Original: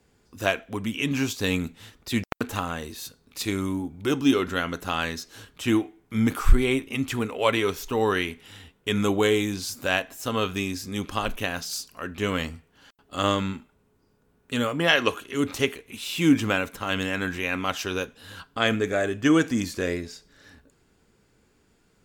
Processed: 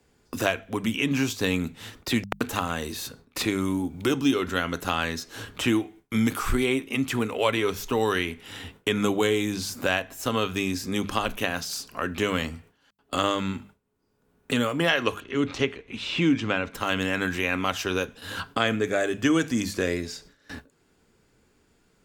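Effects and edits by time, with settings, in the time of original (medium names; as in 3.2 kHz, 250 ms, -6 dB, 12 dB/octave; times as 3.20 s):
15.20–16.75 s: distance through air 150 m
whole clip: hum notches 50/100/150/200 Hz; gate with hold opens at -40 dBFS; three bands compressed up and down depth 70%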